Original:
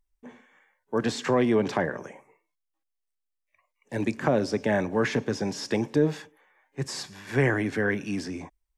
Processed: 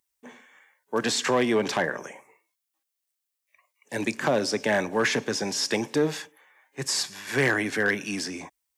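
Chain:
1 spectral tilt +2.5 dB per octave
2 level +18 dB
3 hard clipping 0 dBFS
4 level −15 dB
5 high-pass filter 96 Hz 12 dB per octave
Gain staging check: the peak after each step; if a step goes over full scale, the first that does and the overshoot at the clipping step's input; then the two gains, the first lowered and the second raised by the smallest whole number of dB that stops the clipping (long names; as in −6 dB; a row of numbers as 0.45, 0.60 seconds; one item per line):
−10.0, +8.0, 0.0, −15.0, −11.5 dBFS
step 2, 8.0 dB
step 2 +10 dB, step 4 −7 dB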